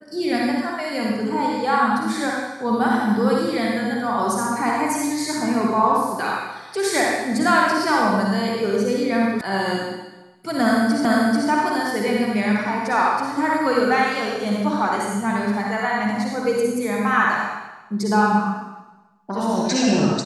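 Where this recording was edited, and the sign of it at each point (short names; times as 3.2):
9.41 sound cut off
11.05 repeat of the last 0.44 s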